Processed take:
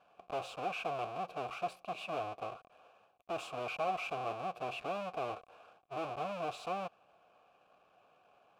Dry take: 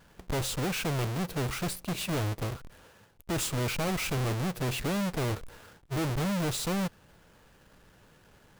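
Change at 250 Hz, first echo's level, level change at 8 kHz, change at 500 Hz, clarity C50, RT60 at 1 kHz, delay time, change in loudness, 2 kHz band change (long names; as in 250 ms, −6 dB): −17.5 dB, no echo audible, −22.5 dB, −4.0 dB, no reverb audible, no reverb audible, no echo audible, −8.5 dB, −7.5 dB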